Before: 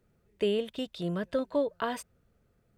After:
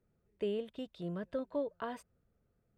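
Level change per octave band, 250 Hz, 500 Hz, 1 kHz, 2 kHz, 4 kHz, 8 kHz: -7.0 dB, -7.5 dB, -8.5 dB, -10.5 dB, -13.0 dB, under -15 dB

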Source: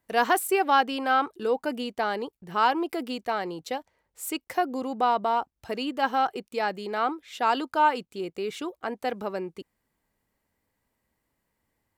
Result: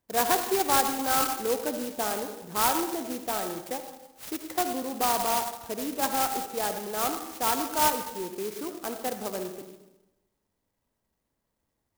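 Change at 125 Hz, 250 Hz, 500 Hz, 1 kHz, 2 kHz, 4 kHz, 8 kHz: no reading, -1.5 dB, -2.0 dB, -3.5 dB, -4.5 dB, +1.5 dB, +10.5 dB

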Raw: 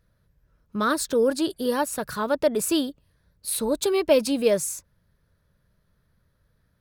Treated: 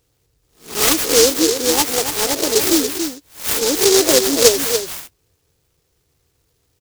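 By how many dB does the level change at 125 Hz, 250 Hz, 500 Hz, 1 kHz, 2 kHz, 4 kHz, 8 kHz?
+7.0 dB, +5.0 dB, +6.0 dB, +4.5 dB, +9.5 dB, +15.5 dB, +15.5 dB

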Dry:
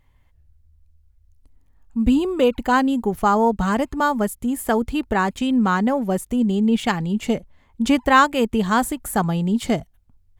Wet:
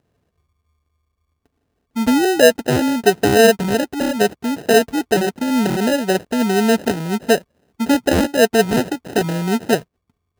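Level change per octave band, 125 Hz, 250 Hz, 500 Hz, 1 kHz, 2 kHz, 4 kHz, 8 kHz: +2.0 dB, +1.5 dB, +7.5 dB, -2.0 dB, +3.5 dB, +7.5 dB, +8.0 dB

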